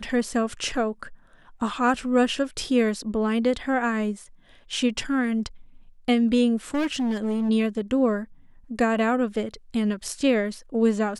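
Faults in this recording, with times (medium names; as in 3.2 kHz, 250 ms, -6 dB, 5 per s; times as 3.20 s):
6.74–7.50 s: clipped -21.5 dBFS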